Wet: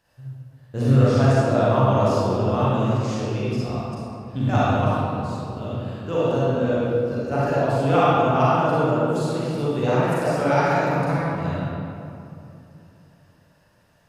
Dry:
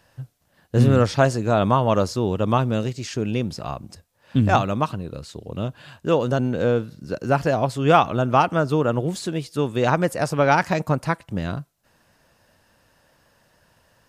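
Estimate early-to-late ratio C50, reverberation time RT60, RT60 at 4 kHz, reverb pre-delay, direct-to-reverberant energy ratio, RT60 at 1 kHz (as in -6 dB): -6.0 dB, 2.7 s, 1.5 s, 34 ms, -9.0 dB, 2.6 s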